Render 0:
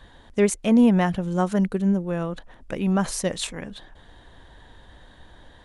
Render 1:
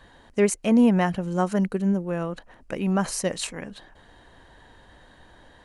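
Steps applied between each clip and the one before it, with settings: low shelf 110 Hz -7.5 dB; notch 3500 Hz, Q 7.4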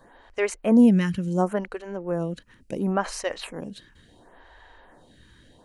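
photocell phaser 0.71 Hz; gain +2.5 dB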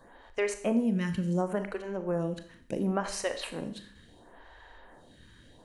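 compressor 6:1, threshold -23 dBFS, peak gain reduction 11 dB; Schroeder reverb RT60 0.58 s, combs from 27 ms, DRR 8.5 dB; gain -2 dB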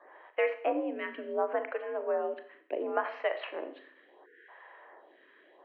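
mistuned SSB +64 Hz 310–2700 Hz; spectral delete 4.26–4.49, 500–1400 Hz; gain +1.5 dB

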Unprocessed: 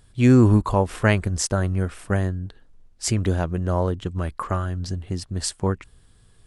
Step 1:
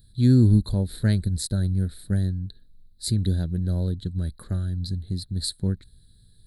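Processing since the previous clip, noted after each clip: EQ curve 200 Hz 0 dB, 310 Hz -7 dB, 580 Hz -14 dB, 1100 Hz -28 dB, 1600 Hz -11 dB, 2800 Hz -25 dB, 4000 Hz +11 dB, 5800 Hz -19 dB, 8700 Hz -3 dB, 13000 Hz +8 dB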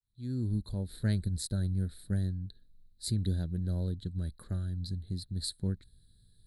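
opening faded in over 1.18 s; gain -7.5 dB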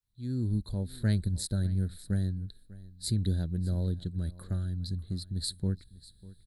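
echo 0.596 s -19.5 dB; gain +2 dB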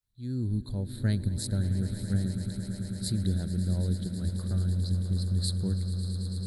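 swelling echo 0.11 s, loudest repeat 8, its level -15.5 dB

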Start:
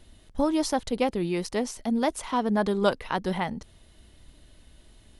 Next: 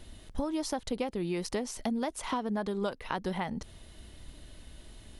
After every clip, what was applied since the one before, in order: compressor 10:1, threshold -33 dBFS, peak gain reduction 16.5 dB; gain +4 dB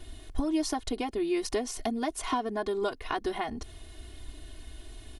comb 2.8 ms, depth 99%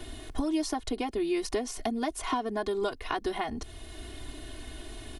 three-band squash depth 40%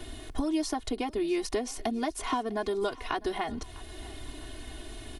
thinning echo 0.652 s, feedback 49%, level -20 dB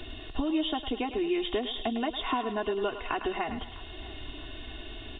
nonlinear frequency compression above 2600 Hz 4:1; thinning echo 0.105 s, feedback 53%, high-pass 570 Hz, level -9 dB

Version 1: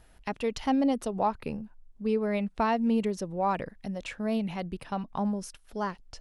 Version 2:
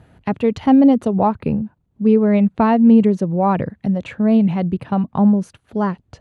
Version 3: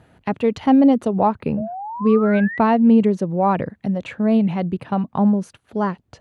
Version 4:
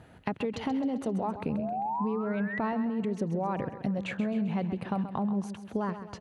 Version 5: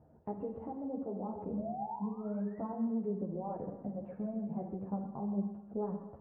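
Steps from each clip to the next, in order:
HPF 99 Hz 24 dB/oct; RIAA curve playback; notch 5300 Hz, Q 6.2; gain +8.5 dB
low shelf 160 Hz -8 dB; painted sound rise, 1.57–2.59, 600–2000 Hz -30 dBFS
limiter -15 dBFS, peak gain reduction 9 dB; compressor, threshold -27 dBFS, peak gain reduction 9 dB; on a send: feedback echo 0.132 s, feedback 53%, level -11 dB; on the sum: gain -1 dB
ladder low-pass 930 Hz, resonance 25%; reverb RT60 0.80 s, pre-delay 36 ms, DRR 6 dB; ensemble effect

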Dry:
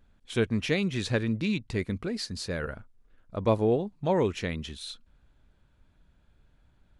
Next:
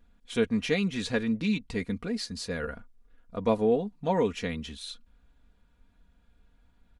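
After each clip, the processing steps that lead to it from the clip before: comb 4.2 ms, depth 64%; gain -2 dB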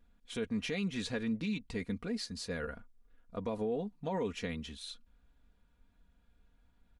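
limiter -21.5 dBFS, peak gain reduction 9.5 dB; gain -5 dB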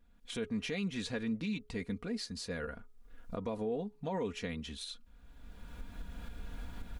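recorder AGC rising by 26 dB/s; de-hum 422 Hz, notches 3; gain -1 dB

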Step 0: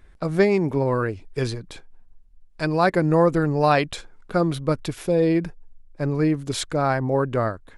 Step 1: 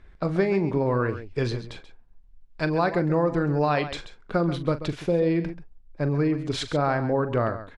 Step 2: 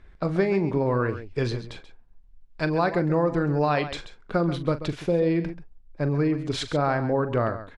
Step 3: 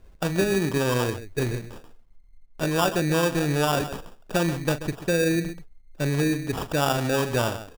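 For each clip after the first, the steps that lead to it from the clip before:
LPF 4700 Hz 12 dB/oct; compressor, threshold -19 dBFS, peak gain reduction 7 dB; on a send: tapped delay 41/134 ms -13/-12.5 dB
nothing audible
sample-and-hold 21×

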